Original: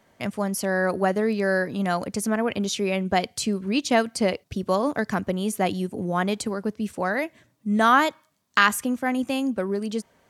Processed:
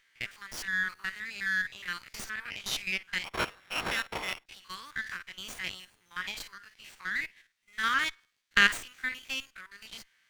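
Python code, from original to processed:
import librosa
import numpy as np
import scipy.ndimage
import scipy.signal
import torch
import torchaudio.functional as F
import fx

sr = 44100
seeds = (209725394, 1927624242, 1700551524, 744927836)

y = fx.spec_steps(x, sr, hold_ms=50)
y = scipy.signal.sosfilt(scipy.signal.cheby2(4, 50, 660.0, 'highpass', fs=sr, output='sos'), y)
y = fx.resample_bad(y, sr, factor=8, down='none', up='hold', at=(3.24, 4.46))
y = fx.lowpass(y, sr, hz=3900.0, slope=6)
y = fx.running_max(y, sr, window=3)
y = y * 10.0 ** (4.0 / 20.0)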